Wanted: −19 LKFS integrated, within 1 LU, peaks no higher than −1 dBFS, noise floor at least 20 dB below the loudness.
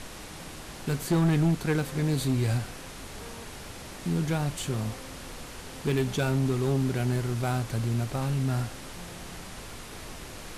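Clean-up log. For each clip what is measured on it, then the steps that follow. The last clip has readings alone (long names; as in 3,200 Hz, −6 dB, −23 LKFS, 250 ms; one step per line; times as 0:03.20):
share of clipped samples 0.9%; peaks flattened at −19.0 dBFS; background noise floor −43 dBFS; target noise floor −49 dBFS; integrated loudness −28.5 LKFS; sample peak −19.0 dBFS; target loudness −19.0 LKFS
→ clipped peaks rebuilt −19 dBFS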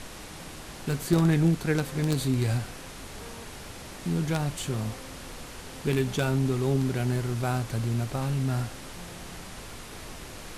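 share of clipped samples 0.0%; background noise floor −43 dBFS; target noise floor −48 dBFS
→ noise reduction from a noise print 6 dB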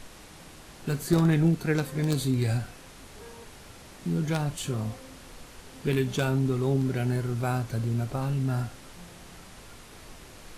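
background noise floor −48 dBFS; integrated loudness −28.0 LKFS; sample peak −10.5 dBFS; target loudness −19.0 LKFS
→ level +9 dB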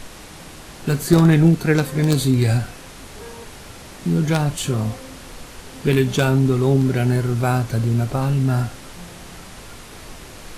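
integrated loudness −19.0 LKFS; sample peak −1.5 dBFS; background noise floor −39 dBFS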